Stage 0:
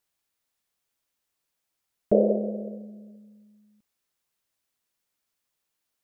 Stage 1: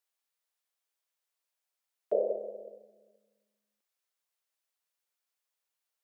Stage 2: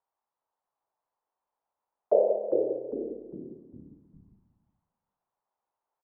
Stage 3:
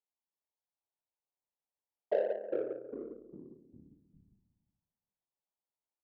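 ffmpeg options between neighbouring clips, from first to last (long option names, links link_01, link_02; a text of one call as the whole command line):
ffmpeg -i in.wav -af "highpass=frequency=440:width=0.5412,highpass=frequency=440:width=1.3066,volume=-6dB" out.wav
ffmpeg -i in.wav -filter_complex "[0:a]lowpass=frequency=930:width_type=q:width=3.5,asplit=6[link_01][link_02][link_03][link_04][link_05][link_06];[link_02]adelay=403,afreqshift=-84,volume=-4.5dB[link_07];[link_03]adelay=806,afreqshift=-168,volume=-12dB[link_08];[link_04]adelay=1209,afreqshift=-252,volume=-19.6dB[link_09];[link_05]adelay=1612,afreqshift=-336,volume=-27.1dB[link_10];[link_06]adelay=2015,afreqshift=-420,volume=-34.6dB[link_11];[link_01][link_07][link_08][link_09][link_10][link_11]amix=inputs=6:normalize=0,volume=3dB" out.wav
ffmpeg -i in.wav -af "adynamicsmooth=sensitivity=1:basefreq=640,volume=-8dB" out.wav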